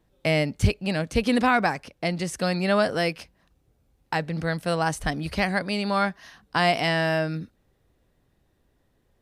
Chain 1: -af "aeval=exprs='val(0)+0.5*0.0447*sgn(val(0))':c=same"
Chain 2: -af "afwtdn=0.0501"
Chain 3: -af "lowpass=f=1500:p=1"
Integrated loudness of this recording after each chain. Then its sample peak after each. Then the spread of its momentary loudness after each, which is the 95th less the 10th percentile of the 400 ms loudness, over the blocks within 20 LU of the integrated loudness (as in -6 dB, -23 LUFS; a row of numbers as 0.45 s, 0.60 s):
-23.0 LUFS, -26.0 LUFS, -26.5 LUFS; -8.0 dBFS, -9.5 dBFS, -9.5 dBFS; 14 LU, 9 LU, 8 LU